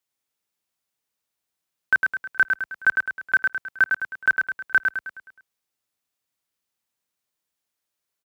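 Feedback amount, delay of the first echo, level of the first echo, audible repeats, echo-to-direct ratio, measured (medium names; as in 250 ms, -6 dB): 47%, 105 ms, -4.5 dB, 5, -3.5 dB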